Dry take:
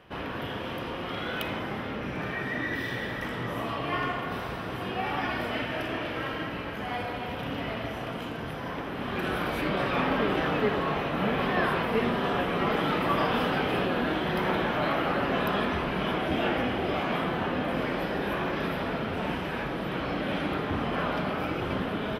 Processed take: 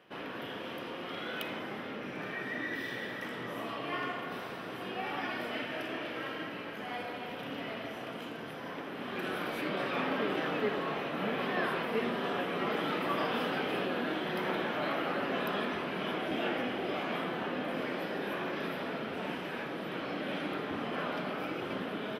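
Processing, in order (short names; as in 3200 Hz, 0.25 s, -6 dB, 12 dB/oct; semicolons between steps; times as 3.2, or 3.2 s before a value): HPF 210 Hz 12 dB/oct; bell 930 Hz -3 dB 0.98 oct; gain -4.5 dB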